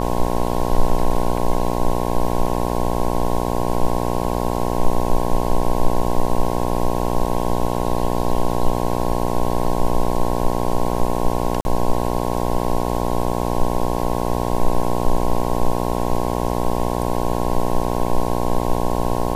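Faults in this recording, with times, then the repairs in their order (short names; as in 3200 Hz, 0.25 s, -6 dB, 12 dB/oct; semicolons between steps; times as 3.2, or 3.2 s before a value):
buzz 60 Hz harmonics 18 -22 dBFS
11.61–11.65 gap 41 ms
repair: de-hum 60 Hz, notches 18; interpolate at 11.61, 41 ms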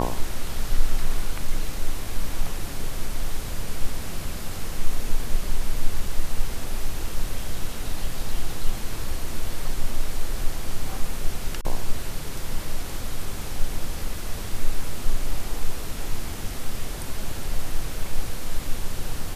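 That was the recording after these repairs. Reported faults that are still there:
none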